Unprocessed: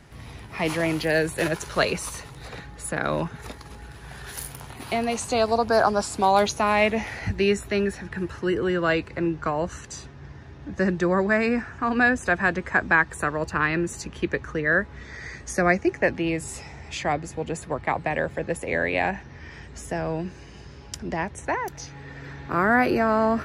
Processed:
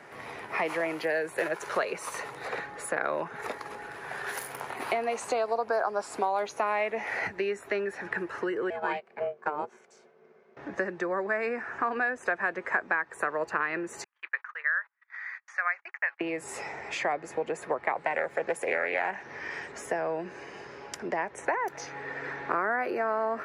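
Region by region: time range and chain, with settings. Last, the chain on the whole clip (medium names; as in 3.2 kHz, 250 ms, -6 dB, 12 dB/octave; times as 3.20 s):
8.70–10.57 s: Butterworth band-stop 1.6 kHz, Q 6.4 + ring modulator 300 Hz + upward expansion 2.5:1, over -35 dBFS
14.04–16.21 s: high-pass 1.2 kHz 24 dB/octave + gate -43 dBFS, range -35 dB + tape spacing loss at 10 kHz 32 dB
17.96–19.72 s: treble shelf 4.3 kHz +9 dB + loudspeaker Doppler distortion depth 0.22 ms
whole clip: compression 10:1, threshold -31 dBFS; high-pass 210 Hz 12 dB/octave; high-order bell 940 Hz +10.5 dB 3 oct; trim -3.5 dB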